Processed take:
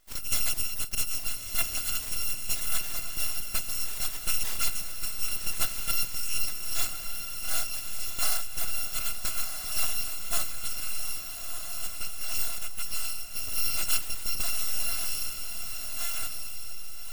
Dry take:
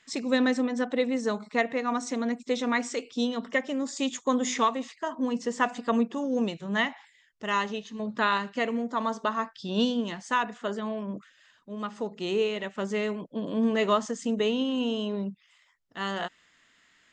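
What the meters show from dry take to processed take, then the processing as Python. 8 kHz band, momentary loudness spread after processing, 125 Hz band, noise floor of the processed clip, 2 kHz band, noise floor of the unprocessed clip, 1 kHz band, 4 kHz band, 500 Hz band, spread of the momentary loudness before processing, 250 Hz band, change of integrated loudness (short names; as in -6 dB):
+11.5 dB, 7 LU, -2.5 dB, -36 dBFS, -6.0 dB, -64 dBFS, -13.5 dB, +2.5 dB, -21.5 dB, 8 LU, -25.5 dB, -1.0 dB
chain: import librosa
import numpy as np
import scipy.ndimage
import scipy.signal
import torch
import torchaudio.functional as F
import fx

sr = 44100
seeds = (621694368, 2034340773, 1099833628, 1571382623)

y = fx.bit_reversed(x, sr, seeds[0], block=256)
y = np.abs(y)
y = fx.echo_diffused(y, sr, ms=1297, feedback_pct=42, wet_db=-5.5)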